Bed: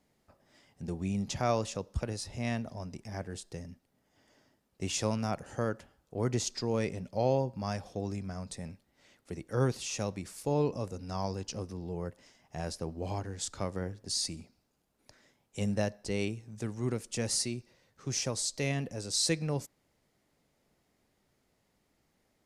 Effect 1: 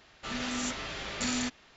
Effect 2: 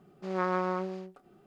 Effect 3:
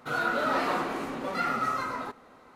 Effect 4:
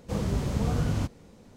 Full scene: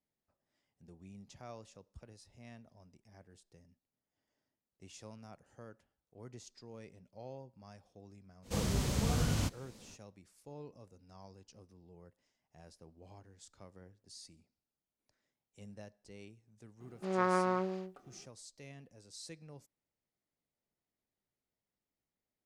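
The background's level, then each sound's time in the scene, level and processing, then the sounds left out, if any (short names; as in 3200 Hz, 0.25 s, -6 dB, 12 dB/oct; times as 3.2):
bed -20 dB
8.42 add 4 -5.5 dB, fades 0.05 s + high shelf 2100 Hz +11 dB
16.8 add 2 -1 dB
not used: 1, 3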